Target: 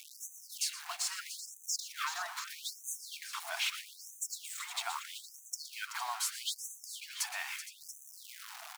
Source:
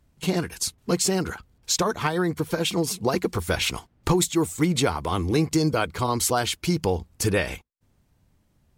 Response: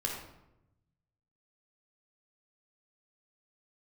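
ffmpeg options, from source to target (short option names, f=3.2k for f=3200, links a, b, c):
-filter_complex "[0:a]aeval=exprs='val(0)+0.5*0.0237*sgn(val(0))':c=same,highpass=f=110:p=1,highshelf=f=5.4k:g=-7,acompressor=threshold=-21dB:ratio=6,alimiter=limit=-22.5dB:level=0:latency=1:release=449,aeval=exprs='val(0)*gte(abs(val(0)),0.0112)':c=same,asplit=2[a][b];[b]aecho=0:1:118|380|465|684:0.2|0.282|0.188|0.237[c];[a][c]amix=inputs=2:normalize=0,afftfilt=real='re*gte(b*sr/1024,640*pow(6000/640,0.5+0.5*sin(2*PI*0.78*pts/sr)))':imag='im*gte(b*sr/1024,640*pow(6000/640,0.5+0.5*sin(2*PI*0.78*pts/sr)))':win_size=1024:overlap=0.75"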